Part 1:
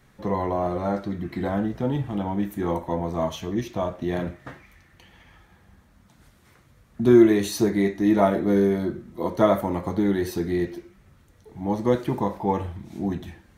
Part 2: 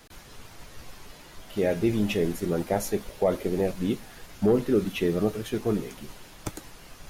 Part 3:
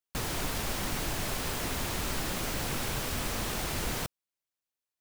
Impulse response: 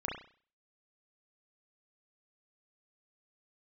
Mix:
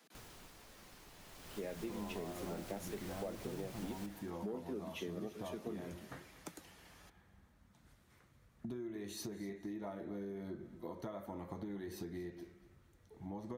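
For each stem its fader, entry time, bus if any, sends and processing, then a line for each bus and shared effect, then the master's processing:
−11.0 dB, 1.65 s, no send, echo send −16 dB, downward compressor 6 to 1, threshold −29 dBFS, peak gain reduction 18 dB
−13.0 dB, 0.00 s, no send, no echo send, Butterworth high-pass 150 Hz 72 dB per octave
0:01.13 −18.5 dB → 0:01.69 −6 dB, 0.00 s, no send, echo send −23.5 dB, automatic ducking −10 dB, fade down 0.60 s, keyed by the second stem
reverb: not used
echo: repeating echo 238 ms, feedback 26%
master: downward compressor 4 to 1, threshold −40 dBFS, peak gain reduction 9.5 dB

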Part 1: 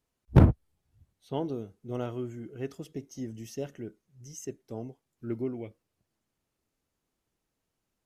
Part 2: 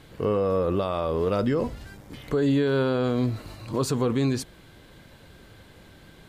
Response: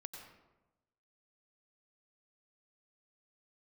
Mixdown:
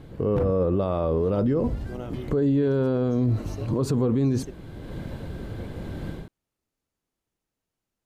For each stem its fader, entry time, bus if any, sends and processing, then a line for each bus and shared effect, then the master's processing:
−3.0 dB, 0.00 s, muted 0:04.66–0:05.58, no send, no processing
0.0 dB, 0.00 s, no send, tilt shelving filter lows +8 dB, about 940 Hz; automatic gain control gain up to 15 dB; automatic ducking −6 dB, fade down 0.65 s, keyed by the first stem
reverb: not used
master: brickwall limiter −16 dBFS, peak gain reduction 9 dB

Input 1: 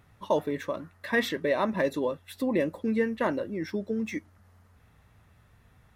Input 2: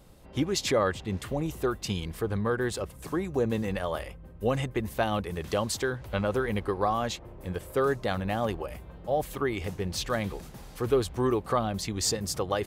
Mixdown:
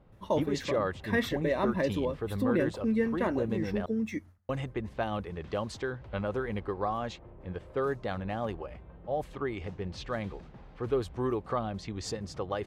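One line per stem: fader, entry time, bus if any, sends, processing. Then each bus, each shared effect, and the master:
−4.5 dB, 0.00 s, no send, noise gate with hold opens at −49 dBFS; low-shelf EQ 210 Hz +9.5 dB
−4.5 dB, 0.00 s, muted 0:03.86–0:04.49, no send, low-pass that shuts in the quiet parts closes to 2,300 Hz, open at −22 dBFS; high-shelf EQ 4,700 Hz −12 dB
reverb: not used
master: no processing

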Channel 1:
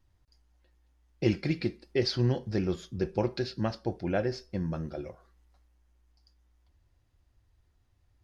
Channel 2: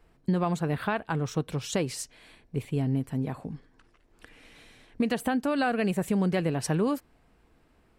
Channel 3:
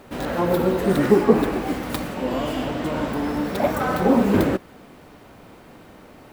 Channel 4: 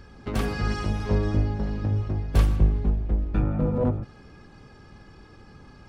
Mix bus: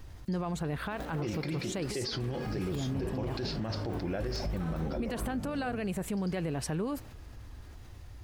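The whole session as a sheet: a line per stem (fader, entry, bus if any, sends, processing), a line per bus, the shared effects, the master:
−2.5 dB, 0.00 s, no send, envelope flattener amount 50%
−0.5 dB, 0.00 s, no send, no processing
−10.5 dB, 0.80 s, no send, downward compressor, threshold −27 dBFS, peak gain reduction 17 dB
−12.0 dB, 1.85 s, no send, no processing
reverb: not used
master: brickwall limiter −26 dBFS, peak gain reduction 11.5 dB

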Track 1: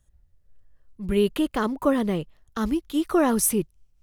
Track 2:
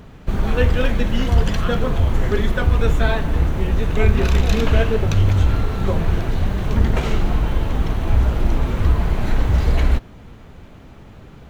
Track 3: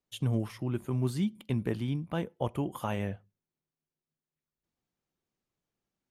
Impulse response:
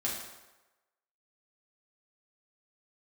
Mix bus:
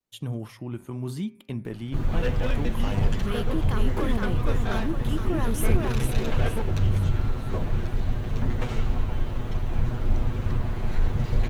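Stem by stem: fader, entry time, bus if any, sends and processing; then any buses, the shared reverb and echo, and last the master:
−3.0 dB, 2.15 s, bus A, no send, echo send −6 dB, two-band tremolo in antiphase 2.9 Hz, depth 70%, crossover 850 Hz
−9.5 dB, 1.65 s, no bus, no send, no echo send, lower of the sound and its delayed copy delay 8.2 ms; low-shelf EQ 110 Hz +7.5 dB
−0.5 dB, 0.00 s, bus A, no send, no echo send, hum removal 129.9 Hz, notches 20
bus A: 0.0 dB, pitch vibrato 0.93 Hz 50 cents; brickwall limiter −23 dBFS, peak gain reduction 6.5 dB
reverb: not used
echo: repeating echo 460 ms, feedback 44%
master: no processing

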